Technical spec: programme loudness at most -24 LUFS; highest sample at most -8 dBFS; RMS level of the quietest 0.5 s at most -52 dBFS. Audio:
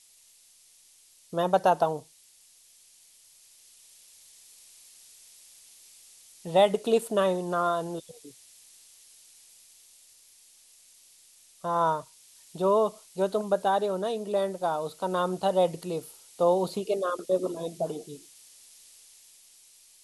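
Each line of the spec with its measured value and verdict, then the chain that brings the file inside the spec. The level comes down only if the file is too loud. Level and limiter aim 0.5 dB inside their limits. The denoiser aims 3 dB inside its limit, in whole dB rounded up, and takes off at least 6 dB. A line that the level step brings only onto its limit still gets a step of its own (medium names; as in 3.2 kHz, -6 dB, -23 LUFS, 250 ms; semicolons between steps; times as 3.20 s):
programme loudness -27.5 LUFS: pass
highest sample -10.0 dBFS: pass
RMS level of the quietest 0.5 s -58 dBFS: pass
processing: none needed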